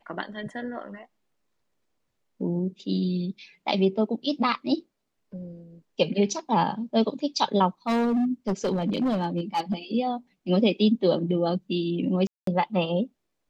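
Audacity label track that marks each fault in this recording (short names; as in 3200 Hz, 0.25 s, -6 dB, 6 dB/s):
7.870000	9.740000	clipped -20.5 dBFS
12.270000	12.470000	gap 0.203 s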